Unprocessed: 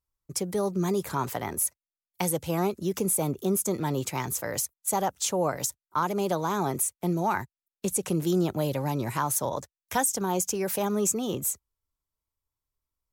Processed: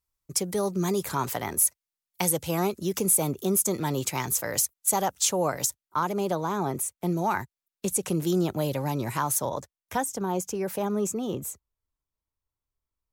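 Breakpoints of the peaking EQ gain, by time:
peaking EQ 15 kHz 2.9 oct
5.47 s +5 dB
6.61 s -6 dB
7.20 s +1.5 dB
9.33 s +1.5 dB
10.01 s -7.5 dB

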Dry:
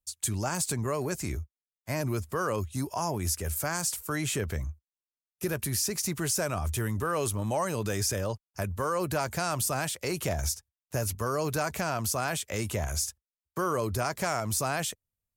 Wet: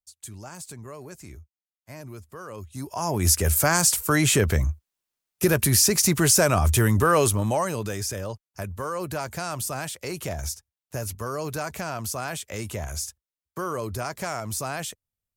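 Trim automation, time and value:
2.47 s -10 dB
2.95 s +0.5 dB
3.30 s +10.5 dB
7.14 s +10.5 dB
8.00 s -1 dB

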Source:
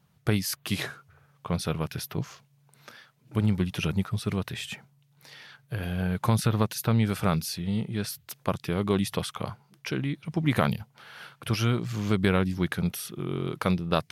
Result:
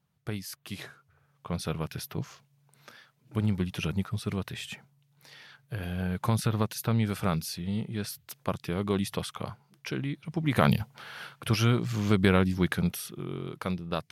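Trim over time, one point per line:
0.87 s -10 dB
1.68 s -3 dB
10.51 s -3 dB
10.77 s +7 dB
11.34 s +1 dB
12.75 s +1 dB
13.47 s -6.5 dB

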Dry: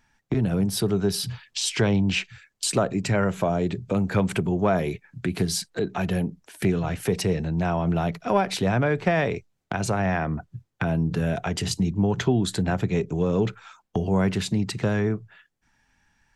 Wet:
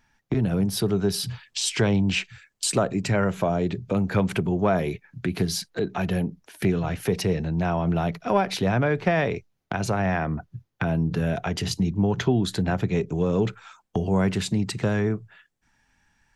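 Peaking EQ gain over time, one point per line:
peaking EQ 8 kHz 0.32 oct
0.86 s -5 dB
1.43 s +1.5 dB
2.71 s +1.5 dB
3.64 s -8 dB
12.73 s -8 dB
13.42 s +2 dB

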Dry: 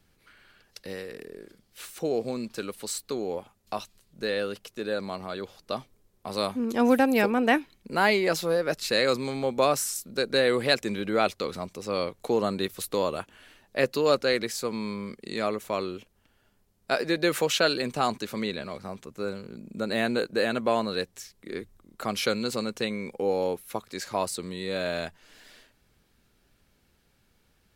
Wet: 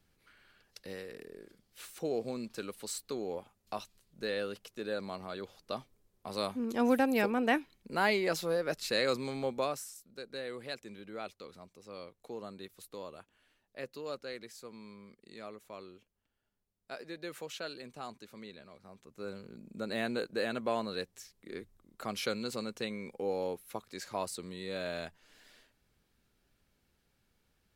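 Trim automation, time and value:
9.47 s -6.5 dB
9.96 s -18 dB
18.81 s -18 dB
19.36 s -8 dB

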